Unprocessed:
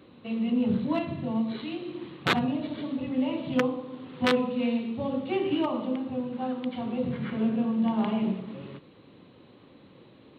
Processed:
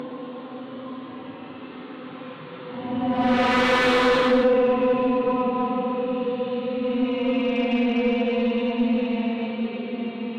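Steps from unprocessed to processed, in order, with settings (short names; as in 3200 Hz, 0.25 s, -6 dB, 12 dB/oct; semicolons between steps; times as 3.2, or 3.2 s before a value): Paulstretch 11×, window 0.10 s, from 3.94; overdrive pedal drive 19 dB, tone 1400 Hz, clips at -9.5 dBFS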